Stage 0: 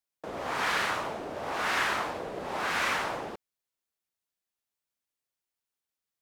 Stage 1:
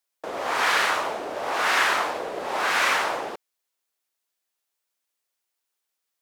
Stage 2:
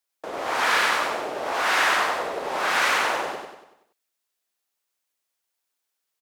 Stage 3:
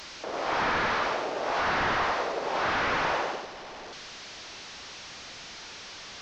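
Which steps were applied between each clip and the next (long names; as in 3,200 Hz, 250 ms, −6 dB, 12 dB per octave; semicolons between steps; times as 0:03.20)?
bass and treble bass −14 dB, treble +1 dB; level +7 dB
repeating echo 95 ms, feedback 49%, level −4 dB; level −1 dB
linear delta modulator 32 kbit/s, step −34.5 dBFS; level −1.5 dB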